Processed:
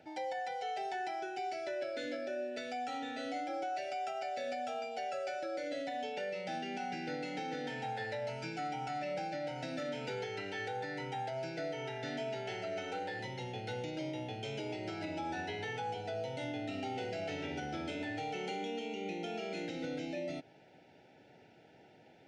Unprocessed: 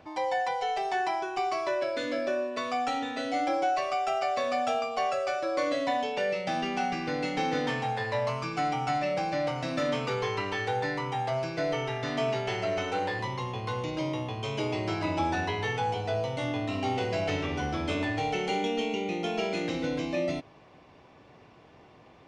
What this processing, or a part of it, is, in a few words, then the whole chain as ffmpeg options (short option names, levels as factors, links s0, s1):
PA system with an anti-feedback notch: -af "highpass=130,asuperstop=centerf=1100:order=12:qfactor=3,alimiter=level_in=1.19:limit=0.0631:level=0:latency=1:release=212,volume=0.841,volume=0.562"